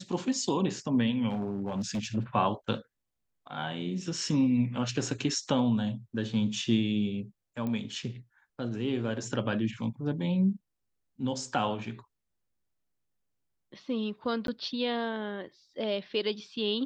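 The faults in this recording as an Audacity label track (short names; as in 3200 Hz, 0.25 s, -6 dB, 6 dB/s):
1.280000	2.170000	clipped -27.5 dBFS
7.670000	7.670000	pop -23 dBFS
14.470000	14.480000	gap 12 ms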